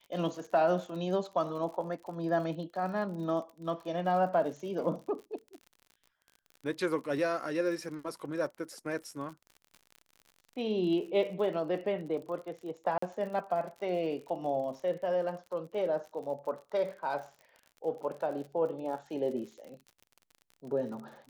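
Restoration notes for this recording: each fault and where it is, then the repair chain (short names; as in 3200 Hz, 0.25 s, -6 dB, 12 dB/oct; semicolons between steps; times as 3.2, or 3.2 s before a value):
crackle 57/s -42 dBFS
12.98–13.02 gap 44 ms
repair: de-click; interpolate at 12.98, 44 ms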